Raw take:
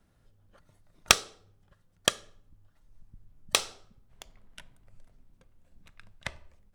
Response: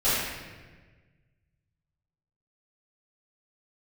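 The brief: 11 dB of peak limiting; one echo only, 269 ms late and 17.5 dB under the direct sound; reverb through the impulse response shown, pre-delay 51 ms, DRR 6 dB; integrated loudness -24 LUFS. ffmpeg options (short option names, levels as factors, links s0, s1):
-filter_complex "[0:a]alimiter=limit=0.188:level=0:latency=1,aecho=1:1:269:0.133,asplit=2[s0][s1];[1:a]atrim=start_sample=2205,adelay=51[s2];[s1][s2]afir=irnorm=-1:irlink=0,volume=0.0891[s3];[s0][s3]amix=inputs=2:normalize=0,volume=5.01"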